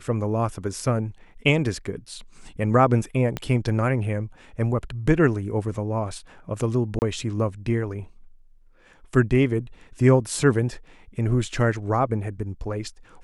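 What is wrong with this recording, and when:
0:03.37: click −13 dBFS
0:06.99–0:07.02: drop-out 29 ms

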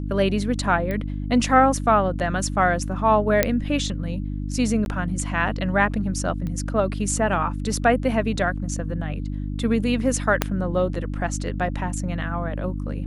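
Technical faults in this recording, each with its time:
mains hum 50 Hz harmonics 6 −28 dBFS
0:00.91: click −16 dBFS
0:03.43: click −2 dBFS
0:04.85–0:04.86: drop-out 11 ms
0:06.47: click −20 dBFS
0:10.42: click −3 dBFS

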